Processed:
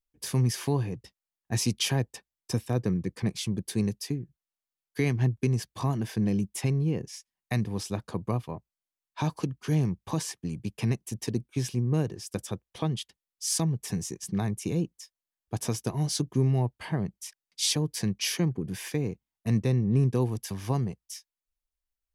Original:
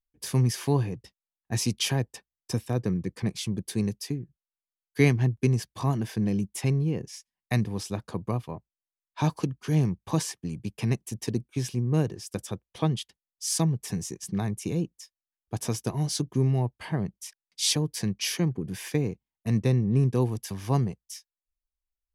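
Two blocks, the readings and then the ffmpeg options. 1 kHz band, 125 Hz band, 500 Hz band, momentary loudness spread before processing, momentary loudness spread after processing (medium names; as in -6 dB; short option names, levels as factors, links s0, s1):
-1.5 dB, -1.5 dB, -2.0 dB, 12 LU, 10 LU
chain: -af "alimiter=limit=0.168:level=0:latency=1:release=205"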